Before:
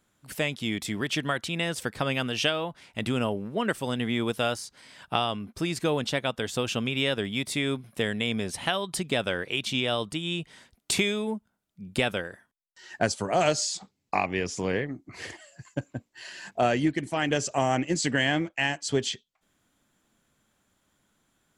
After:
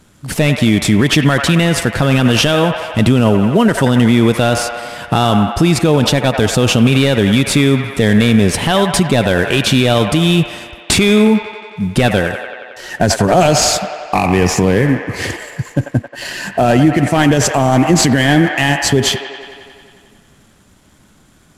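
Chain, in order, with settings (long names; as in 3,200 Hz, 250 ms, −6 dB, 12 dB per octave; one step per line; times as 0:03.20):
variable-slope delta modulation 64 kbit/s
low-shelf EQ 340 Hz +10 dB
on a send: delay with a band-pass on its return 90 ms, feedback 74%, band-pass 1,300 Hz, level −9 dB
on the sum: boost into a limiter +17.5 dB
level −1 dB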